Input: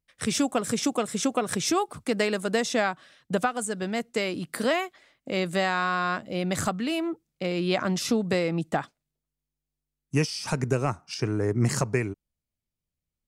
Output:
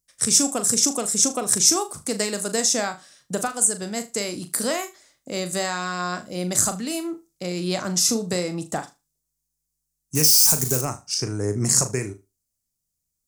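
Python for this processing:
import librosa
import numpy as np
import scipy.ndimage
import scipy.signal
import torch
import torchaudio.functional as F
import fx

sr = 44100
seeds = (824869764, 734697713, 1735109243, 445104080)

y = fx.crossing_spikes(x, sr, level_db=-23.0, at=(10.15, 10.81))
y = fx.high_shelf_res(y, sr, hz=4400.0, db=13.5, q=1.5)
y = fx.room_flutter(y, sr, wall_m=6.7, rt60_s=0.24)
y = y * librosa.db_to_amplitude(-1.0)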